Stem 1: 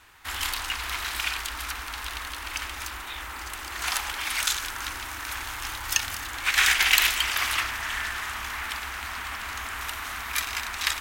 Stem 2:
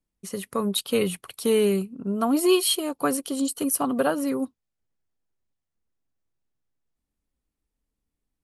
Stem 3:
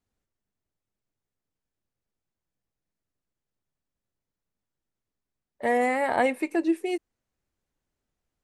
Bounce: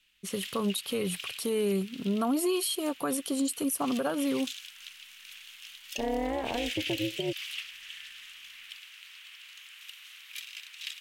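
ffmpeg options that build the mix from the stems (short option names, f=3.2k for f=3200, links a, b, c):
-filter_complex "[0:a]asoftclip=type=hard:threshold=-11dB,highpass=f=2.9k:t=q:w=3.4,volume=-16.5dB[a];[1:a]volume=-1dB[b];[2:a]tiltshelf=f=690:g=9,alimiter=limit=-15dB:level=0:latency=1,tremolo=f=210:d=0.824,adelay=350,volume=-1.5dB[c];[a][b][c]amix=inputs=3:normalize=0,alimiter=limit=-21dB:level=0:latency=1:release=112"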